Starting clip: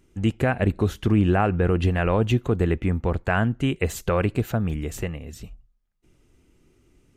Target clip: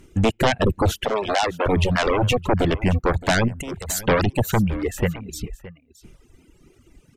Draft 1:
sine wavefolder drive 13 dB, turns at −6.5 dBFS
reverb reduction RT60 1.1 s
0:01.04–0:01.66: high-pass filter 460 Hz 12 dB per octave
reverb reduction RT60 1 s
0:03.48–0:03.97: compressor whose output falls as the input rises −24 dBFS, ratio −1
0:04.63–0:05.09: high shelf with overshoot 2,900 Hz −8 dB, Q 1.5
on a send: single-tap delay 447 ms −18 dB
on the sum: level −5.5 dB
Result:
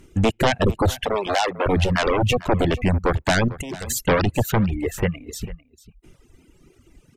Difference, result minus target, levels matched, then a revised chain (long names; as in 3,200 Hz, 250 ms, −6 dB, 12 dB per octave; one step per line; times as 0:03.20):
echo 171 ms early
sine wavefolder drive 13 dB, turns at −6.5 dBFS
reverb reduction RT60 1.1 s
0:01.04–0:01.66: high-pass filter 460 Hz 12 dB per octave
reverb reduction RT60 1 s
0:03.48–0:03.97: compressor whose output falls as the input rises −24 dBFS, ratio −1
0:04.63–0:05.09: high shelf with overshoot 2,900 Hz −8 dB, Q 1.5
on a send: single-tap delay 618 ms −18 dB
on the sum: level −5.5 dB